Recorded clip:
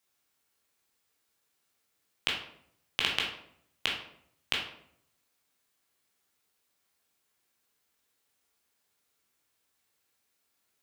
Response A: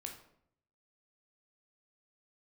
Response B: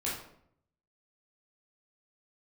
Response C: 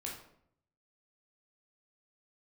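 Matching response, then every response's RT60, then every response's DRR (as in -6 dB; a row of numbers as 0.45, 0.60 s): C; 0.70, 0.70, 0.70 s; 2.0, -7.0, -3.0 dB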